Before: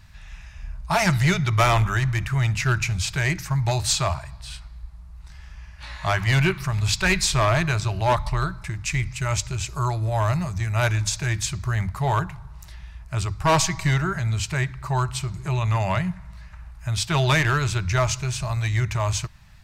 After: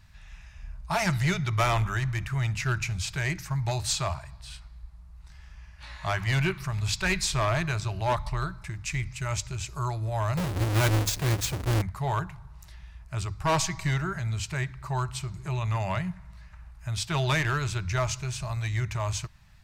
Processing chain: 10.37–11.82 half-waves squared off; gain -6 dB

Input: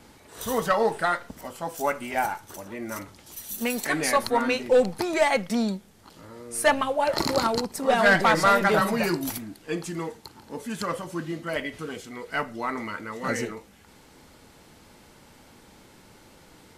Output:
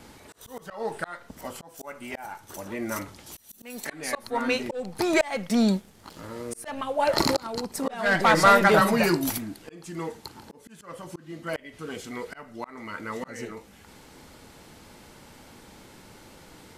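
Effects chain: 4.95–6.81 sample leveller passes 1; auto swell 0.523 s; gain +3 dB

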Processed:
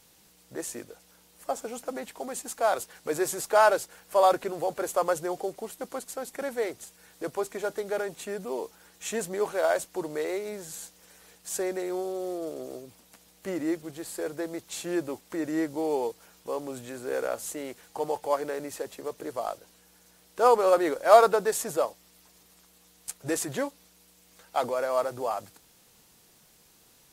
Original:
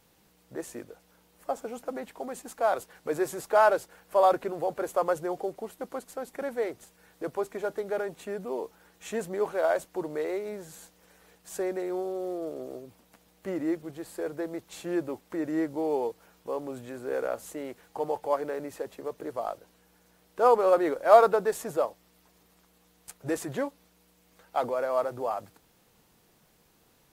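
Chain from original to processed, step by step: bell 7900 Hz +9.5 dB 2.7 oct

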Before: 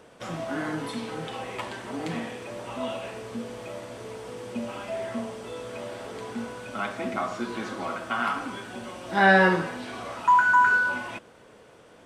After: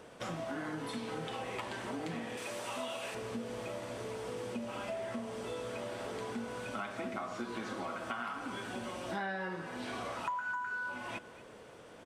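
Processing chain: 2.37–3.15 tilt +2.5 dB/oct; compressor 8:1, threshold -35 dBFS, peak gain reduction 21 dB; speakerphone echo 0.23 s, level -16 dB; gain -1 dB

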